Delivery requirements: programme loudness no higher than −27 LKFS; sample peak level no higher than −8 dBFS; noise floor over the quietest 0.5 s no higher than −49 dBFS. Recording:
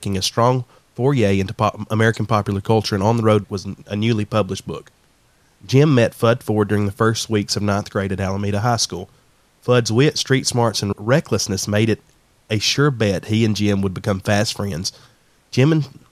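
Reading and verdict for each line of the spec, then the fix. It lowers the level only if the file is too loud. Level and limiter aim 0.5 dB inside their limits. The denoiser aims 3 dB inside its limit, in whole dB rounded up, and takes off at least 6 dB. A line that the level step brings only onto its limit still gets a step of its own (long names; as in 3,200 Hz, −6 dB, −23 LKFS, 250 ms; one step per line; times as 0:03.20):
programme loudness −19.0 LKFS: out of spec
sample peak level −2.0 dBFS: out of spec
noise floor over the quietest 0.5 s −57 dBFS: in spec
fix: level −8.5 dB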